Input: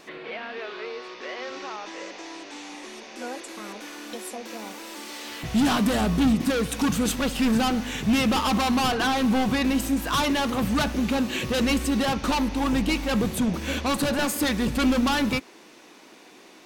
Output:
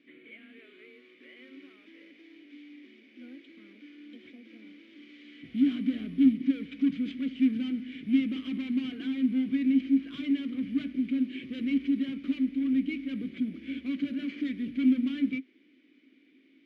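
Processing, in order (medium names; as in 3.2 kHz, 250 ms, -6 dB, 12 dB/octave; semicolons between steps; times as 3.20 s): careless resampling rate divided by 4×, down none, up zero stuff; vowel filter i; distance through air 250 m; upward expansion 1.5:1, over -27 dBFS; trim +3.5 dB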